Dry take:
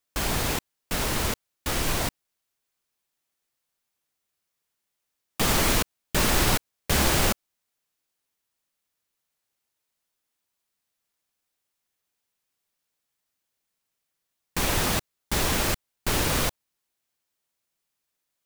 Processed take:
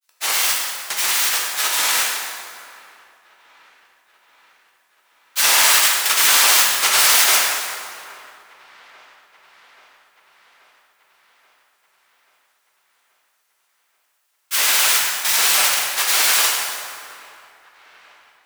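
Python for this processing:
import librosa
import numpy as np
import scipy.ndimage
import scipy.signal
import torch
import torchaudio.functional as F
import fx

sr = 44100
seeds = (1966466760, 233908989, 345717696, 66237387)

p1 = scipy.signal.sosfilt(scipy.signal.butter(2, 1200.0, 'highpass', fs=sr, output='sos'), x)
p2 = fx.tilt_eq(p1, sr, slope=1.5)
p3 = fx.granulator(p2, sr, seeds[0], grain_ms=100.0, per_s=20.0, spray_ms=100.0, spread_st=7)
p4 = p3 + fx.echo_wet_lowpass(p3, sr, ms=832, feedback_pct=64, hz=2400.0, wet_db=-24.0, dry=0)
p5 = fx.rev_plate(p4, sr, seeds[1], rt60_s=2.3, hf_ratio=0.65, predelay_ms=0, drr_db=-3.5)
y = F.gain(torch.from_numpy(p5), 7.0).numpy()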